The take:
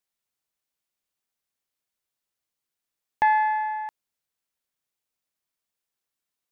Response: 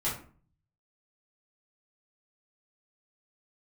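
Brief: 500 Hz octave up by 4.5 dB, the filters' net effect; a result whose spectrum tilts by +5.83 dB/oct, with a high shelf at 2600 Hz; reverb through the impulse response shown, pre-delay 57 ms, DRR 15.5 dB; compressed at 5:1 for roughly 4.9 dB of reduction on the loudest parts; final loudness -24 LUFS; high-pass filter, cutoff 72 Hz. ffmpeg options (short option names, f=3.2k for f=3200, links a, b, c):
-filter_complex "[0:a]highpass=72,equalizer=f=500:t=o:g=6.5,highshelf=f=2.6k:g=-6.5,acompressor=threshold=-21dB:ratio=5,asplit=2[a][b];[1:a]atrim=start_sample=2205,adelay=57[c];[b][c]afir=irnorm=-1:irlink=0,volume=-22dB[d];[a][d]amix=inputs=2:normalize=0,volume=2dB"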